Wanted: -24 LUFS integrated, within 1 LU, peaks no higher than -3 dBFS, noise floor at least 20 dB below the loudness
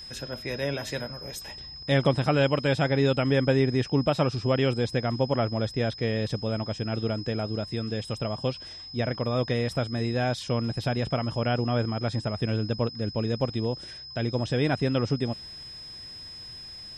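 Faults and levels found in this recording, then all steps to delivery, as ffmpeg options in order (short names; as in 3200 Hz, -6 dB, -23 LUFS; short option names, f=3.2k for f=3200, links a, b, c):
steady tone 5100 Hz; tone level -40 dBFS; loudness -27.5 LUFS; peak -9.0 dBFS; loudness target -24.0 LUFS
-> -af "bandreject=f=5.1k:w=30"
-af "volume=3.5dB"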